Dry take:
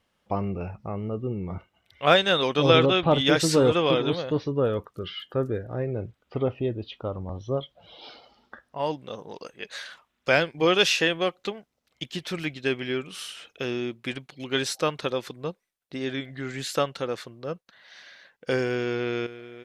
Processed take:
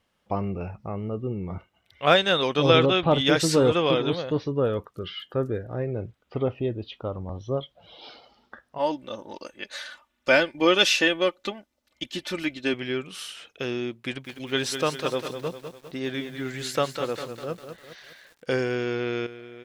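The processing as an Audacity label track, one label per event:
8.780000	12.740000	comb 3.4 ms
13.980000	18.590000	bit-crushed delay 201 ms, feedback 55%, word length 8-bit, level -8 dB

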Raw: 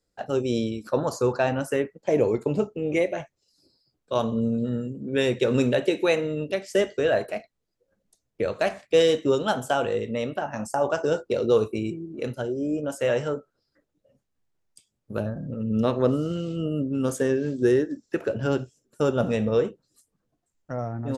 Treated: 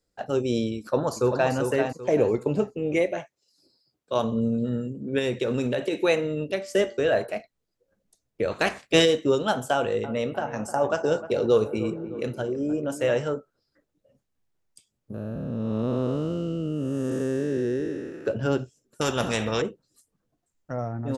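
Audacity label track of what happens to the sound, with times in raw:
0.770000	1.530000	echo throw 390 ms, feedback 30%, level -5.5 dB
3.190000	4.230000	high-pass 340 Hz -> 110 Hz 6 dB/octave
5.180000	5.930000	compression, threshold -21 dBFS
6.530000	7.280000	de-hum 116.4 Hz, notches 13
8.500000	9.040000	spectral peaks clipped ceiling under each frame's peak by 14 dB
9.730000	13.170000	feedback echo behind a low-pass 306 ms, feedback 51%, low-pass 1.6 kHz, level -13 dB
15.140000	18.260000	spectral blur width 464 ms
19.010000	19.620000	spectrum-flattening compressor 2:1

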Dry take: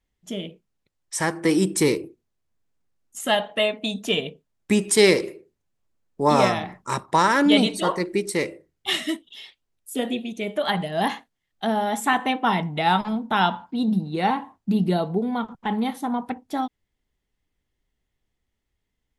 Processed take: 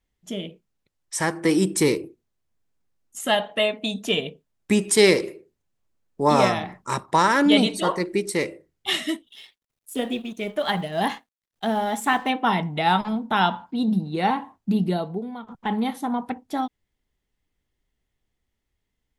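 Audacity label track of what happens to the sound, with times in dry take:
9.270000	12.300000	companding laws mixed up coded by A
14.710000	15.470000	fade out, to -13.5 dB

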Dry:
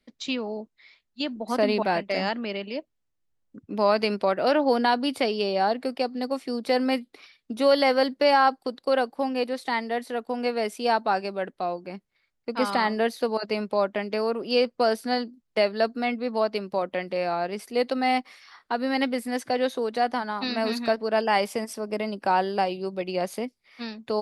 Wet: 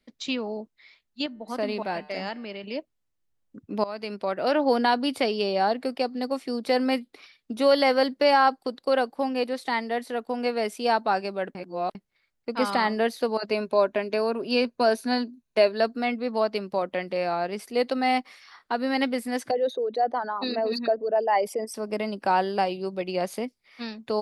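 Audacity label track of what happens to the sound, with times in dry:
1.260000	2.640000	feedback comb 150 Hz, decay 1.7 s, mix 50%
3.840000	4.680000	fade in linear, from -18 dB
11.550000	11.950000	reverse
13.500000	15.800000	rippled EQ curve crests per octave 1.5, crest to trough 7 dB
19.510000	21.740000	resonances exaggerated exponent 2

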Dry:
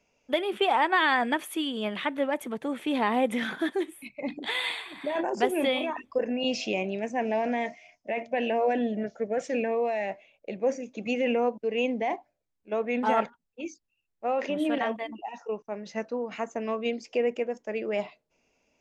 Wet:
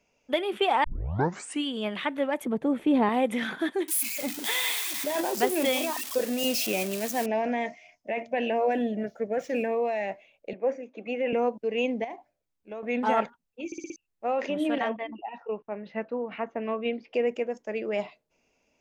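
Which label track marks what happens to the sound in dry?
0.840000	0.840000	tape start 0.81 s
2.450000	3.090000	tilt shelf lows +7.5 dB
3.880000	7.260000	zero-crossing glitches of -22.5 dBFS
8.710000	9.840000	median filter over 5 samples
10.530000	11.330000	three-band isolator lows -15 dB, under 270 Hz, highs -19 dB, over 2.8 kHz
12.040000	12.830000	compression 4:1, threshold -36 dBFS
13.660000	13.660000	stutter in place 0.06 s, 5 plays
14.890000	17.140000	inverse Chebyshev low-pass stop band from 9.5 kHz, stop band 60 dB

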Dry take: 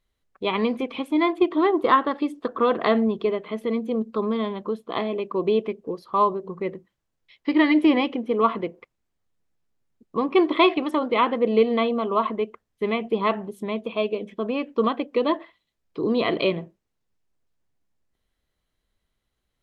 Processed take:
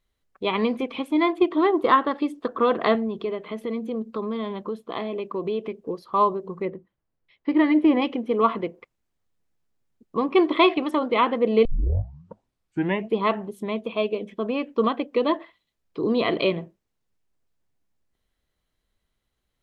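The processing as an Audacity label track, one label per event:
2.950000	5.740000	compression 2:1, threshold -27 dBFS
6.650000	8.020000	low-pass 1.3 kHz 6 dB/octave
11.650000	11.650000	tape start 1.49 s

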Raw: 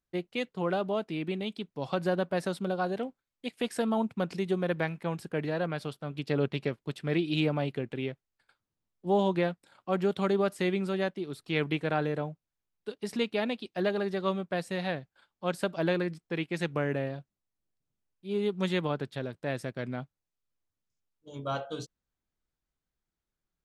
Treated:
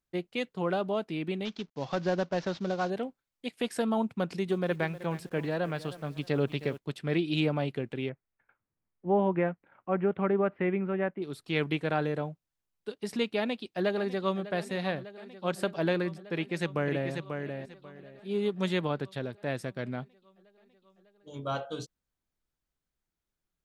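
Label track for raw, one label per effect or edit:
1.450000	2.900000	CVSD coder 32 kbps
4.140000	6.780000	bit-crushed delay 312 ms, feedback 35%, word length 8-bit, level -15 dB
8.090000	11.220000	steep low-pass 2.4 kHz
13.370000	14.510000	echo throw 600 ms, feedback 80%, level -15.5 dB
16.330000	17.110000	echo throw 540 ms, feedback 20%, level -6 dB

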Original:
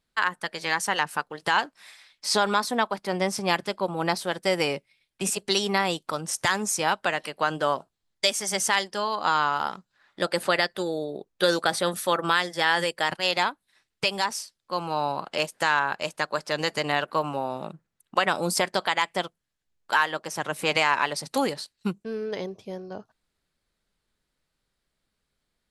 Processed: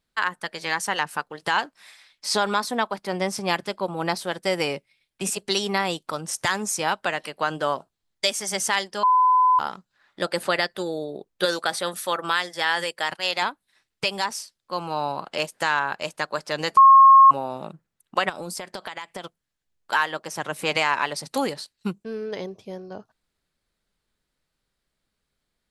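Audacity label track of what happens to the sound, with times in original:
9.030000	9.590000	bleep 1.01 kHz -14 dBFS
11.450000	13.420000	bass shelf 390 Hz -8 dB
16.770000	17.310000	bleep 1.08 kHz -7.5 dBFS
18.290000	19.240000	compression 12:1, threshold -29 dBFS

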